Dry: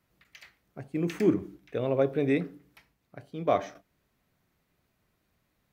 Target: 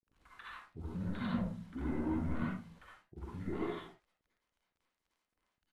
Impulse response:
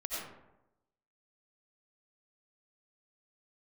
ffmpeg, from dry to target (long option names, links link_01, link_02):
-filter_complex "[0:a]aexciter=amount=1.8:drive=5.8:freq=2500,asplit=2[link_01][link_02];[link_02]acompressor=threshold=-32dB:ratio=12,volume=2dB[link_03];[link_01][link_03]amix=inputs=2:normalize=0,flanger=delay=0.6:depth=4.2:regen=-48:speed=1.8:shape=triangular,aresample=16000,asoftclip=type=tanh:threshold=-30dB,aresample=44100,acrusher=bits=9:mix=0:aa=0.000001,highshelf=frequency=4000:gain=-7.5,asetrate=25476,aresample=44100,atempo=1.73107,acrossover=split=570[link_04][link_05];[link_05]adelay=50[link_06];[link_04][link_06]amix=inputs=2:normalize=0[link_07];[1:a]atrim=start_sample=2205,afade=type=out:start_time=0.32:duration=0.01,atrim=end_sample=14553,asetrate=70560,aresample=44100[link_08];[link_07][link_08]afir=irnorm=-1:irlink=0,volume=2dB"